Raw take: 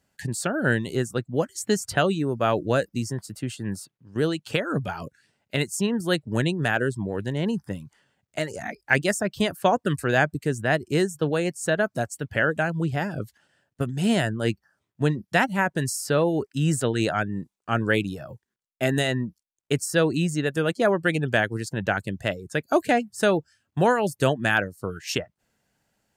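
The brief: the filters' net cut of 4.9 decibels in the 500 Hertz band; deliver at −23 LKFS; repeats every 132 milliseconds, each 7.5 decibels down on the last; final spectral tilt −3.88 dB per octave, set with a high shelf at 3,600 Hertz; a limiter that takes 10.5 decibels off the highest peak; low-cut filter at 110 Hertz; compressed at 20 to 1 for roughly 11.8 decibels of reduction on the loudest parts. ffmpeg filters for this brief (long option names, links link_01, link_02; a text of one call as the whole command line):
ffmpeg -i in.wav -af "highpass=110,equalizer=frequency=500:width_type=o:gain=-6.5,highshelf=frequency=3600:gain=8.5,acompressor=threshold=-27dB:ratio=20,alimiter=limit=-22dB:level=0:latency=1,aecho=1:1:132|264|396|528|660:0.422|0.177|0.0744|0.0312|0.0131,volume=10.5dB" out.wav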